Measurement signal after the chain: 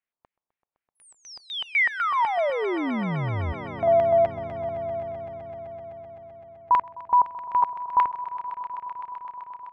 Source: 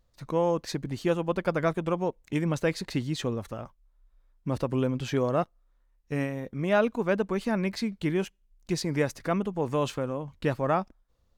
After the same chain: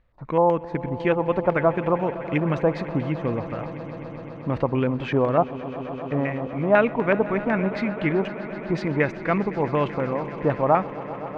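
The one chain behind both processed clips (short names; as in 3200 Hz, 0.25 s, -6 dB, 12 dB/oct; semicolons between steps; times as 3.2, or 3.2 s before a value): LFO low-pass square 4 Hz 910–2200 Hz; swelling echo 0.128 s, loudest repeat 5, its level -18 dB; gain +3.5 dB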